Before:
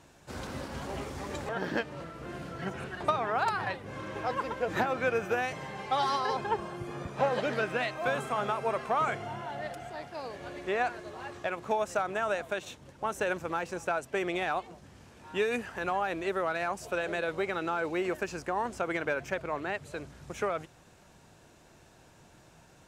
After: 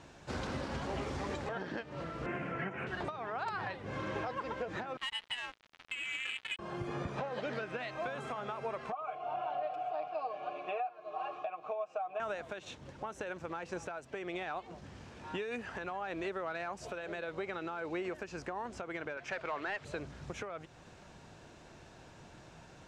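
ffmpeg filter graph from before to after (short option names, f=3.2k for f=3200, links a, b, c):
-filter_complex "[0:a]asettb=1/sr,asplit=3[a][b][c];[a]atrim=end=2.264[d];[b]atrim=start=2.26:end=2.87,asetpts=PTS-STARTPTS,afade=t=in:d=0.004:c=qsin,afade=t=out:st=0.606:d=0.004:c=qsin,highpass=120,highshelf=f=3.1k:t=q:w=3:g=-9.5[e];[c]atrim=start=2.866[f];[d][e]acrossfade=d=0.004:c1=hsin:c2=qsin[g];[g][f]acrossfade=d=0.004:c1=qsin:c2=hsin,asettb=1/sr,asplit=3[h][i][j];[h]atrim=end=4.974[k];[i]atrim=start=4.97:end=6.59,asetpts=PTS-STARTPTS,afade=t=in:d=0.004:c=qsin,afade=t=out:st=1.616:d=0.004:c=qsin,lowpass=f=2.9k:t=q:w=0.5098,lowpass=f=2.9k:t=q:w=0.6013,lowpass=f=2.9k:t=q:w=0.9,lowpass=f=2.9k:t=q:w=2.563,afreqshift=-3400,adynamicsmooth=sensitivity=4.5:basefreq=550,aeval=exprs='sgn(val(0))*max(abs(val(0))-0.00668,0)':c=same[l];[j]atrim=start=6.586[m];[k][l]acrossfade=d=0.004:c1=hsin:c2=qsin[n];[n][m]acrossfade=d=0.004:c1=qsin:c2=hsin,asettb=1/sr,asplit=3[o][p][q];[o]atrim=end=8.924[r];[p]atrim=start=8.92:end=12.2,asetpts=PTS-STARTPTS,afade=t=in:d=0.004:c=qsin,afade=t=out:st=3.276:d=0.004:c=qsin,aecho=1:1:6.5:0.85,atrim=end_sample=144648,acontrast=88,asplit=3[s][t][u];[s]bandpass=f=730:t=q:w=8,volume=0dB[v];[t]bandpass=f=1.09k:t=q:w=8,volume=-6dB[w];[u]bandpass=f=2.44k:t=q:w=8,volume=-9dB[x];[v][w][x]amix=inputs=3:normalize=0[y];[q]atrim=start=12.196[z];[r][y]acrossfade=d=0.004:c1=hsin:c2=qsin[aa];[aa][z]acrossfade=d=0.004:c1=qsin:c2=hsin,asettb=1/sr,asplit=3[ab][ac][ad];[ab]atrim=end=19.174[ae];[ac]atrim=start=19.17:end=19.85,asetpts=PTS-STARTPTS,afade=t=in:d=0.004:c=qsin,afade=t=out:st=0.676:d=0.004:c=qsin,tiltshelf=f=1.5k:g=-4.5,volume=27.5dB,asoftclip=hard,volume=-27.5dB,asplit=2[af][ag];[ag]highpass=f=720:p=1,volume=12dB,asoftclip=type=tanh:threshold=-22dB[ah];[af][ah]amix=inputs=2:normalize=0,lowpass=f=2k:p=1,volume=-6dB[ai];[ad]atrim=start=19.846[aj];[ae][ai]acrossfade=d=0.004:c1=hsin:c2=qsin[ak];[ak][aj]acrossfade=d=0.004:c1=qsin:c2=hsin,lowpass=6k,acompressor=threshold=-35dB:ratio=6,alimiter=level_in=6.5dB:limit=-24dB:level=0:latency=1:release=451,volume=-6.5dB,volume=3dB"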